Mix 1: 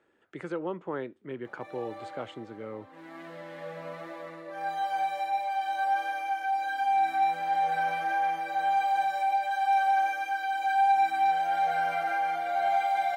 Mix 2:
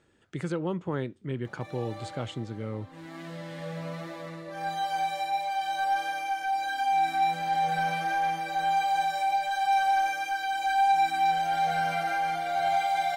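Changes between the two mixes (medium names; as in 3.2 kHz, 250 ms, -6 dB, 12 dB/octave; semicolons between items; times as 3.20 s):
background: add treble shelf 8 kHz -9 dB; master: remove three-band isolator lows -17 dB, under 270 Hz, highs -13 dB, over 2.6 kHz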